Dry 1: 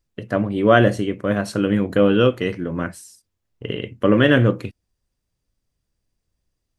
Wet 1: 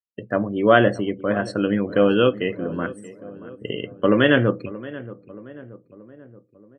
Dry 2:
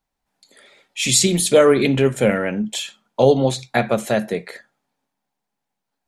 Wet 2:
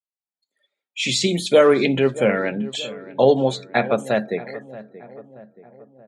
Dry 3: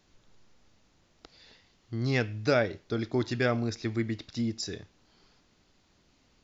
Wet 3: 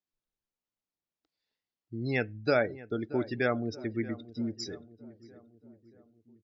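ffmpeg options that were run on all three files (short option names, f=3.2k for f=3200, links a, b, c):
-filter_complex "[0:a]afftdn=nr=30:nf=-35,acrossover=split=5500[a][b];[b]acompressor=threshold=-42dB:ratio=4:attack=1:release=60[c];[a][c]amix=inputs=2:normalize=0,highpass=f=210:p=1,asplit=2[d][e];[e]adelay=628,lowpass=f=1.4k:p=1,volume=-16.5dB,asplit=2[f][g];[g]adelay=628,lowpass=f=1.4k:p=1,volume=0.55,asplit=2[h][i];[i]adelay=628,lowpass=f=1.4k:p=1,volume=0.55,asplit=2[j][k];[k]adelay=628,lowpass=f=1.4k:p=1,volume=0.55,asplit=2[l][m];[m]adelay=628,lowpass=f=1.4k:p=1,volume=0.55[n];[d][f][h][j][l][n]amix=inputs=6:normalize=0"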